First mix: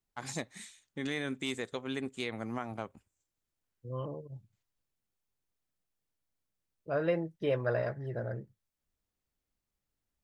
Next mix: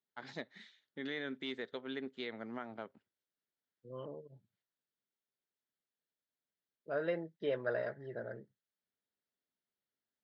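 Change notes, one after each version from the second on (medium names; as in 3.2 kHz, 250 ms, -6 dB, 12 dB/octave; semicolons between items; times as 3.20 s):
first voice: add distance through air 93 m; master: add cabinet simulation 290–4200 Hz, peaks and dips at 320 Hz -5 dB, 520 Hz -4 dB, 770 Hz -7 dB, 1.1 kHz -9 dB, 2.5 kHz -10 dB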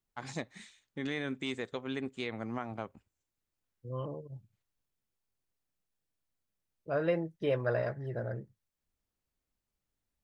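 master: remove cabinet simulation 290–4200 Hz, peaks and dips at 320 Hz -5 dB, 520 Hz -4 dB, 770 Hz -7 dB, 1.1 kHz -9 dB, 2.5 kHz -10 dB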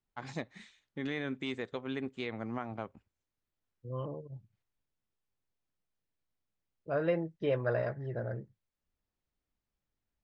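master: add distance through air 100 m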